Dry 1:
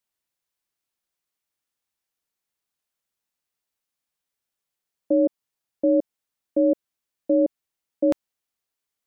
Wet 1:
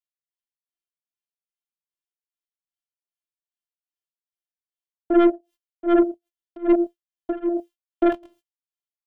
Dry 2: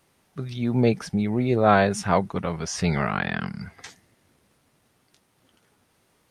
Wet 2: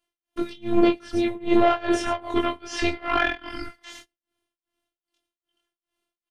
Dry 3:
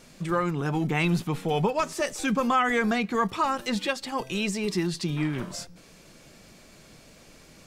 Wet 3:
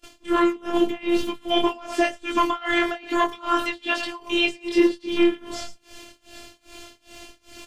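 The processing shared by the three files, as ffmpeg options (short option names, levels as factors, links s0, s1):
-filter_complex "[0:a]flanger=delay=5.4:depth=4.1:regen=74:speed=0.92:shape=triangular,aecho=1:1:111:0.178,flanger=delay=20:depth=6.6:speed=2.2,asoftclip=type=tanh:threshold=0.0596,agate=range=0.0562:threshold=0.001:ratio=16:detection=peak,acrossover=split=3400[s0][s1];[s1]acompressor=threshold=0.00158:ratio=4:attack=1:release=60[s2];[s0][s2]amix=inputs=2:normalize=0,tremolo=f=2.5:d=0.96,afftfilt=real='hypot(re,im)*cos(PI*b)':imag='0':win_size=512:overlap=0.75,equalizer=f=3100:t=o:w=0.33:g=9,alimiter=level_in=20:limit=0.891:release=50:level=0:latency=1,volume=0.531"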